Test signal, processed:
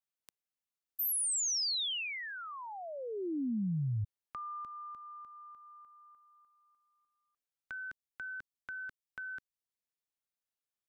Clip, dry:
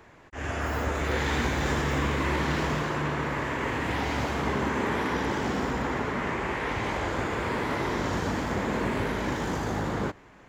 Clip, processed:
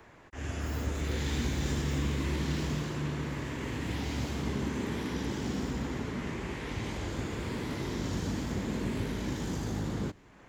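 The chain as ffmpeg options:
-filter_complex "[0:a]acrossover=split=350|3000[s0][s1][s2];[s1]acompressor=threshold=0.00224:ratio=2[s3];[s0][s3][s2]amix=inputs=3:normalize=0,volume=0.841"

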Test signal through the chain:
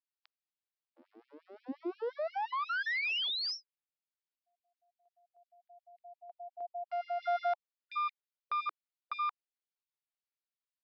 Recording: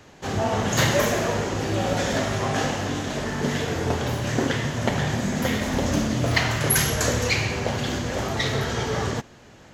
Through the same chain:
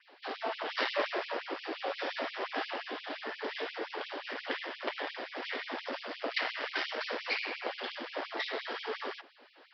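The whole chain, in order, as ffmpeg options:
-af "adynamicequalizer=threshold=0.00447:dfrequency=4100:dqfactor=3.4:tfrequency=4100:tqfactor=3.4:attack=5:release=100:ratio=0.375:range=2.5:mode=cutabove:tftype=bell,aresample=11025,aeval=exprs='clip(val(0),-1,0.0422)':c=same,aresample=44100,afftfilt=real='re*gte(b*sr/1024,240*pow(2300/240,0.5+0.5*sin(2*PI*5.7*pts/sr)))':imag='im*gte(b*sr/1024,240*pow(2300/240,0.5+0.5*sin(2*PI*5.7*pts/sr)))':win_size=1024:overlap=0.75,volume=0.531"

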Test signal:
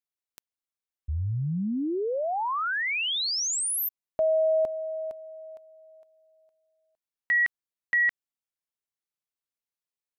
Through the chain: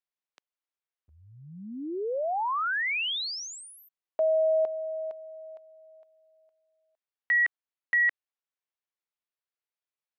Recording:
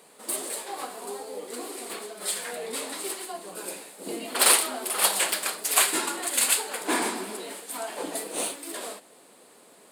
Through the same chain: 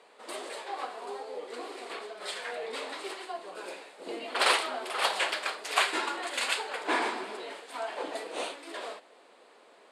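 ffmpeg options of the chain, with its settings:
-af "highpass=420,lowpass=3600"

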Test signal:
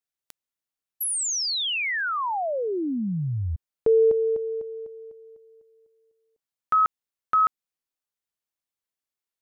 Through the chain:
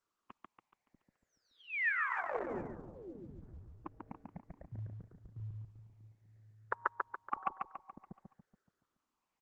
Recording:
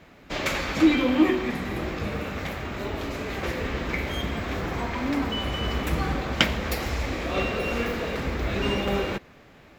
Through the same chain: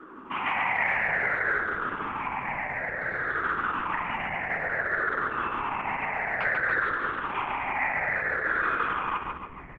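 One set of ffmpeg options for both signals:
-filter_complex "[0:a]afftfilt=real='re*pow(10,20/40*sin(2*PI*(0.81*log(max(b,1)*sr/1024/100)/log(2)-(-0.57)*(pts-256)/sr)))':imag='im*pow(10,20/40*sin(2*PI*(0.81*log(max(b,1)*sr/1024/100)/log(2)-(-0.57)*(pts-256)/sr)))':win_size=1024:overlap=0.75,afftfilt=real='re*lt(hypot(re,im),0.282)':imag='im*lt(hypot(re,im),0.282)':win_size=1024:overlap=0.75,acrossover=split=440[s0][s1];[s0]adelay=640[s2];[s2][s1]amix=inputs=2:normalize=0,acrossover=split=230|1400[s3][s4][s5];[s4]acompressor=threshold=0.00631:ratio=20:attack=0.92:release=90:knee=6:detection=rms[s6];[s3][s6][s5]amix=inputs=3:normalize=0,highpass=f=430:t=q:w=0.5412,highpass=f=430:t=q:w=1.307,lowpass=f=2300:t=q:w=0.5176,lowpass=f=2300:t=q:w=0.7071,lowpass=f=2300:t=q:w=1.932,afreqshift=-340,asplit=2[s7][s8];[s8]aecho=0:1:142|284|426|568|710|852:0.631|0.315|0.158|0.0789|0.0394|0.0197[s9];[s7][s9]amix=inputs=2:normalize=0,volume=2.11" -ar 48000 -c:a libopus -b:a 10k

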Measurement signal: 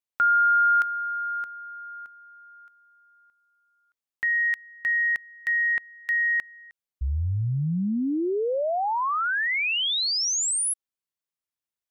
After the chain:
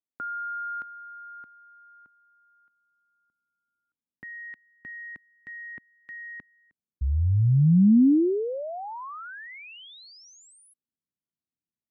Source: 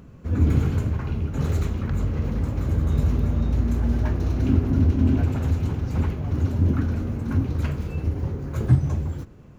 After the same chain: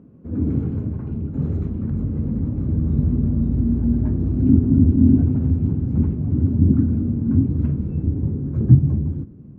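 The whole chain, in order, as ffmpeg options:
-af "bandpass=f=270:t=q:w=1.4:csg=0,asubboost=boost=4:cutoff=240,volume=1.5"

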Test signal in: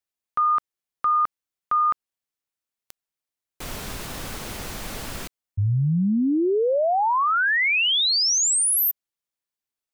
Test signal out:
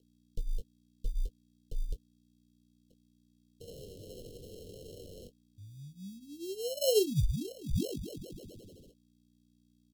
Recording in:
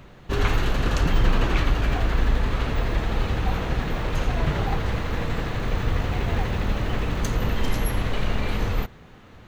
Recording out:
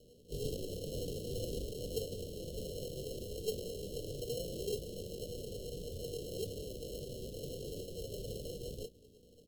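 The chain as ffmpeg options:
-filter_complex "[0:a]equalizer=f=270:t=o:w=0.21:g=-12,flanger=delay=8.5:depth=2.5:regen=-21:speed=0.7:shape=sinusoidal,aeval=exprs='val(0)+0.00891*(sin(2*PI*60*n/s)+sin(2*PI*2*60*n/s)/2+sin(2*PI*3*60*n/s)/3+sin(2*PI*4*60*n/s)/4+sin(2*PI*5*60*n/s)/5)':c=same,asplit=3[s0][s1][s2];[s0]bandpass=f=730:t=q:w=8,volume=1[s3];[s1]bandpass=f=1090:t=q:w=8,volume=0.501[s4];[s2]bandpass=f=2440:t=q:w=8,volume=0.355[s5];[s3][s4][s5]amix=inputs=3:normalize=0,acrusher=samples=37:mix=1:aa=0.000001,asuperstop=centerf=1300:order=12:qfactor=0.51,asplit=2[s6][s7];[s7]adelay=21,volume=0.335[s8];[s6][s8]amix=inputs=2:normalize=0,volume=1.78" -ar 44100 -c:a libmp3lame -b:a 96k

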